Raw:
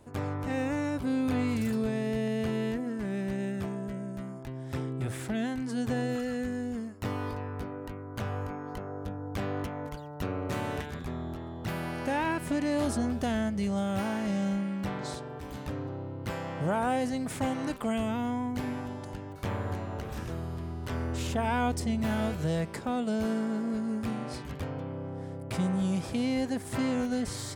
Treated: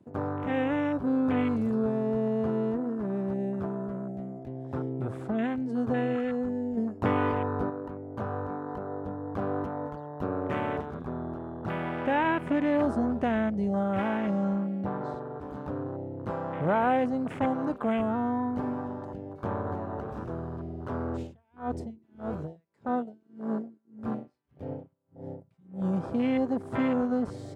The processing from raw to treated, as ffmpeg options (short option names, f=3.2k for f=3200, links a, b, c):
-filter_complex "[0:a]asettb=1/sr,asplit=3[a][b][c];[a]atrim=end=6.774[d];[b]atrim=start=6.77:end=7.7,asetpts=PTS-STARTPTS,afade=t=in:d=0.004:c=qsin,afade=t=out:st=0.926:d=0.004:c=qsin,acontrast=44[e];[c]atrim=start=7.696[f];[d][e]acrossfade=d=0.004:c1=hsin:c2=qsin[g];[g][f]acrossfade=d=0.004:c1=qsin:c2=hsin,asettb=1/sr,asplit=3[h][i][j];[h]atrim=end=14.814[k];[i]atrim=start=14.81:end=15.41,asetpts=PTS-STARTPTS,afade=t=in:d=0.004:c=qsin,afade=t=out:st=0.596:d=0.004:c=qsin,lowpass=f=3.3k:p=1[l];[j]atrim=start=15.406[m];[k][l]acrossfade=d=0.004:c1=hsin:c2=qsin[n];[n][m]acrossfade=d=0.004:c1=qsin:c2=hsin,asplit=3[o][p][q];[o]afade=t=out:st=21.16:d=0.02[r];[p]aeval=exprs='val(0)*pow(10,-31*(0.5-0.5*cos(2*PI*1.7*n/s))/20)':c=same,afade=t=in:st=21.16:d=0.02,afade=t=out:st=25.92:d=0.02[s];[q]afade=t=in:st=25.92:d=0.02[t];[r][s][t]amix=inputs=3:normalize=0,lowpass=f=3.1k:p=1,afwtdn=0.00891,highpass=f=220:p=1,volume=5dB"